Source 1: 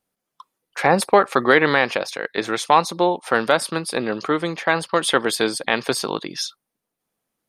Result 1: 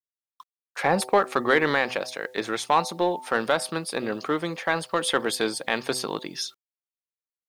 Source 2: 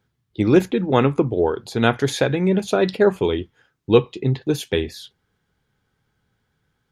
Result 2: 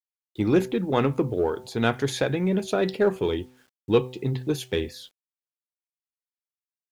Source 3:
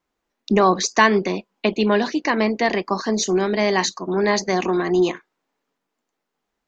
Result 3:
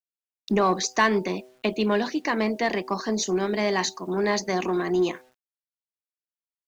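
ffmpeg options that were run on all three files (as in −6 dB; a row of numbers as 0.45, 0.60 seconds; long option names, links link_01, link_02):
-filter_complex "[0:a]bandreject=frequency=126.9:width_type=h:width=4,bandreject=frequency=253.8:width_type=h:width=4,bandreject=frequency=380.7:width_type=h:width=4,bandreject=frequency=507.6:width_type=h:width=4,bandreject=frequency=634.5:width_type=h:width=4,bandreject=frequency=761.4:width_type=h:width=4,bandreject=frequency=888.3:width_type=h:width=4,asplit=2[link_01][link_02];[link_02]asoftclip=type=hard:threshold=-15.5dB,volume=-9.5dB[link_03];[link_01][link_03]amix=inputs=2:normalize=0,acrusher=bits=8:mix=0:aa=0.000001,volume=-7dB"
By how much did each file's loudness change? −5.5, −5.5, −5.0 LU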